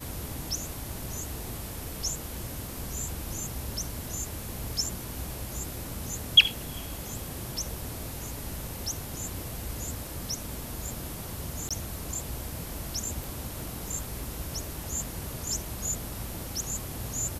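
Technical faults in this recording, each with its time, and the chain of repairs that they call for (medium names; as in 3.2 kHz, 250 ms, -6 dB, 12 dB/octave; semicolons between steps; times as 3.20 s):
11.69–11.71 s: dropout 16 ms
13.24 s: pop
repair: de-click; interpolate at 11.69 s, 16 ms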